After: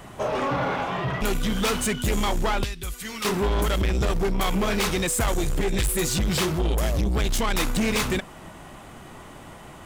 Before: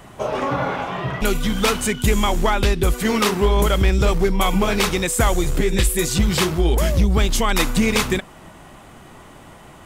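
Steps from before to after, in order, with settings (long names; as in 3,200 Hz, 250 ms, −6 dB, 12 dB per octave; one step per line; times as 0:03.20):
0:02.64–0:03.25: guitar amp tone stack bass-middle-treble 5-5-5
soft clipping −19.5 dBFS, distortion −9 dB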